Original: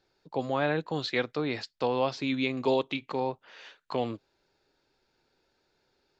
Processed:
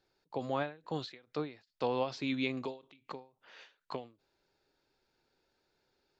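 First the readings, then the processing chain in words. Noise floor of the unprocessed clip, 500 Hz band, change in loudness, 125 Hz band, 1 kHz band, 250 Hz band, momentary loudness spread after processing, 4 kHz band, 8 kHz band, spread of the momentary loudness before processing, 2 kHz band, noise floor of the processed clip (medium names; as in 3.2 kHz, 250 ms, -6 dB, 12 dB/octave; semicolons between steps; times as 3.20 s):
-75 dBFS, -8.5 dB, -7.0 dB, -7.5 dB, -7.5 dB, -7.0 dB, 22 LU, -8.0 dB, no reading, 9 LU, -9.0 dB, -83 dBFS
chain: endings held to a fixed fall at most 170 dB/s; trim -4.5 dB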